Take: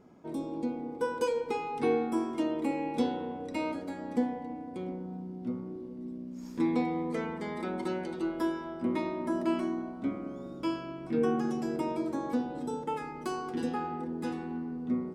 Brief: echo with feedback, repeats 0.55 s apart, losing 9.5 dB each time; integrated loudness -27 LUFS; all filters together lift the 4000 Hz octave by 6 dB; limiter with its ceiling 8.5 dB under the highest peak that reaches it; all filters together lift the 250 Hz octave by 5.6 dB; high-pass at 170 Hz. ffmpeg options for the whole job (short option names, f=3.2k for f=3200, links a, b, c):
-af "highpass=170,equalizer=f=250:t=o:g=7.5,equalizer=f=4k:t=o:g=8,alimiter=limit=-20dB:level=0:latency=1,aecho=1:1:550|1100|1650|2200:0.335|0.111|0.0365|0.012,volume=3.5dB"